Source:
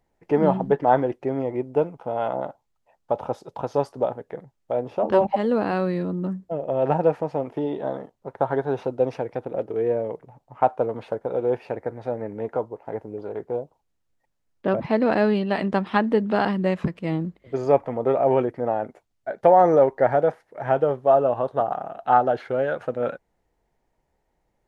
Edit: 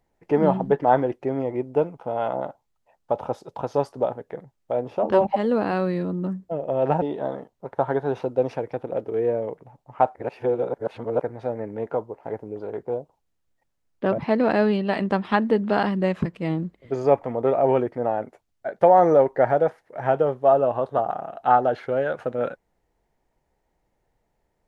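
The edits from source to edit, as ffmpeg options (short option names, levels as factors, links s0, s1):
-filter_complex "[0:a]asplit=4[s0][s1][s2][s3];[s0]atrim=end=7.022[s4];[s1]atrim=start=7.638:end=10.772[s5];[s2]atrim=start=10.768:end=11.842,asetpts=PTS-STARTPTS,areverse[s6];[s3]atrim=start=11.838[s7];[s4][s5]acrossfade=d=0.004:c1=hsin:c2=hsin[s8];[s8][s6]acrossfade=d=0.004:c1=hsin:c2=hsin[s9];[s9][s7]acrossfade=d=0.004:c1=hsin:c2=hsin"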